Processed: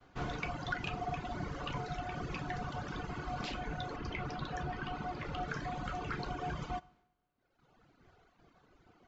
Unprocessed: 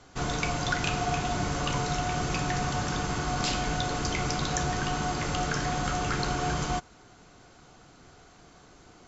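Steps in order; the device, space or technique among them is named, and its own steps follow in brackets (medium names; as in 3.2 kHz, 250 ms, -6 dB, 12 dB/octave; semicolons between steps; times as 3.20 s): 3.96–5.48 s: low-pass 5.3 kHz 12 dB/octave; reverb removal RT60 1.8 s; hearing-loss simulation (low-pass 3.1 kHz 12 dB/octave; expander -56 dBFS); two-slope reverb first 0.8 s, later 2 s, from -18 dB, DRR 19.5 dB; trim -6.5 dB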